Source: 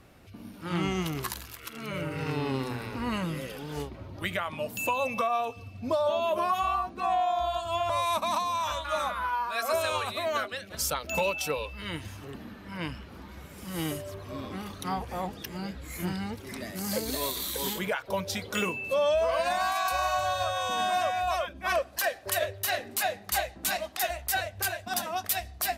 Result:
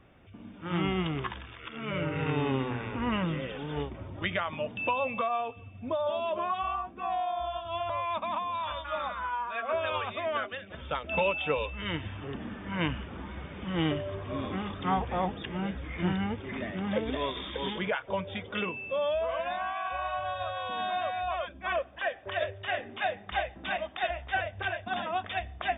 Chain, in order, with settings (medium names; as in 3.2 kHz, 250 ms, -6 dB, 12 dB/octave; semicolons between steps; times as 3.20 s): brick-wall FIR low-pass 3.7 kHz; gain riding 2 s; trim -2 dB